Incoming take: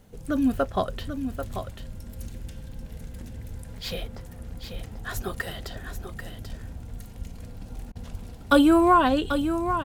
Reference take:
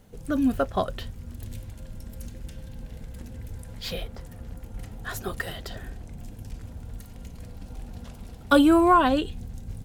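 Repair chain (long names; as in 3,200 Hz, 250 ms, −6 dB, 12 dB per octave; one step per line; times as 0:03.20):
0:05.15–0:05.27: high-pass filter 140 Hz 24 dB per octave
0:07.18–0:07.30: high-pass filter 140 Hz 24 dB per octave
0:08.11–0:08.23: high-pass filter 140 Hz 24 dB per octave
repair the gap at 0:02.72/0:03.78/0:04.86, 4.2 ms
repair the gap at 0:07.92, 33 ms
echo removal 789 ms −8.5 dB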